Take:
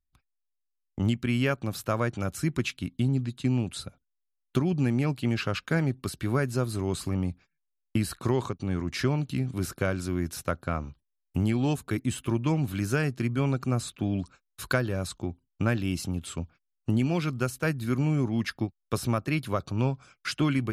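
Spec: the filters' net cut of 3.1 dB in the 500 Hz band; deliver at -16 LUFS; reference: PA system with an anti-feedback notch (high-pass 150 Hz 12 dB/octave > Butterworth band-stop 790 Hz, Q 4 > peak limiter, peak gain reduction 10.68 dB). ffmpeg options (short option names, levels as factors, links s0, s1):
-af "highpass=150,asuperstop=centerf=790:order=8:qfactor=4,equalizer=f=500:t=o:g=-4,volume=8.41,alimiter=limit=0.596:level=0:latency=1"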